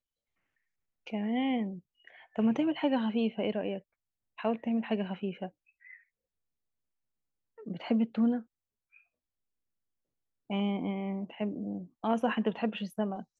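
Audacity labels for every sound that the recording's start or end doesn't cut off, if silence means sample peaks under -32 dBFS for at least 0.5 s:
1.070000	1.680000	sound
2.380000	3.770000	sound
4.410000	5.460000	sound
7.680000	8.380000	sound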